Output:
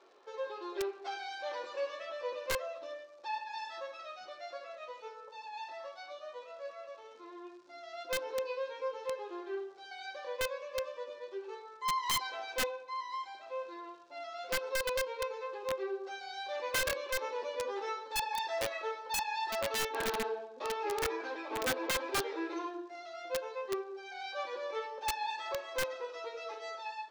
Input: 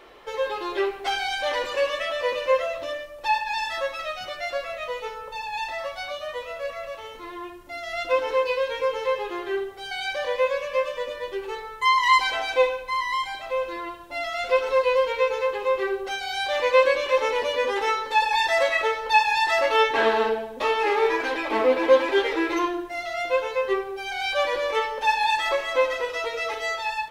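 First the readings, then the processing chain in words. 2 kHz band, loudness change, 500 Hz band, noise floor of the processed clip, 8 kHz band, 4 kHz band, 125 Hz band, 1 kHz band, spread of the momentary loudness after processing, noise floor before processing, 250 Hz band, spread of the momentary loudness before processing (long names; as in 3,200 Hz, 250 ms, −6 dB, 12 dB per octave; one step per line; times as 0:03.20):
−14.0 dB, −13.5 dB, −14.0 dB, −53 dBFS, −0.5 dB, −11.0 dB, can't be measured, −14.0 dB, 13 LU, −39 dBFS, −12.0 dB, 12 LU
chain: flanger 0.12 Hz, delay 7.1 ms, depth 5 ms, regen −62%
surface crackle 190 per second −42 dBFS
loudspeaker in its box 330–6,200 Hz, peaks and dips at 360 Hz +5 dB, 2,000 Hz −8 dB, 3,000 Hz −7 dB
wrap-around overflow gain 18 dB
level −8.5 dB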